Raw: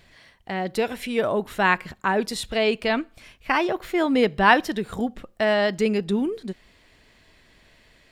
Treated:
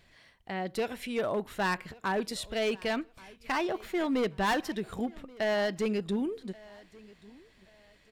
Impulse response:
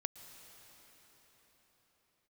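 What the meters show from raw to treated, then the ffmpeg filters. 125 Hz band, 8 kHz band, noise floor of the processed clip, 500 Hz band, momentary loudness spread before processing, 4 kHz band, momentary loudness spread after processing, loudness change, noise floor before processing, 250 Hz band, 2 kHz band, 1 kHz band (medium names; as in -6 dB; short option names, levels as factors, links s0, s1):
-7.0 dB, -5.5 dB, -63 dBFS, -8.0 dB, 11 LU, -8.0 dB, 10 LU, -8.5 dB, -57 dBFS, -7.5 dB, -10.5 dB, -10.0 dB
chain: -af "asoftclip=type=hard:threshold=0.141,aecho=1:1:1131|2262:0.0708|0.0212,volume=0.447"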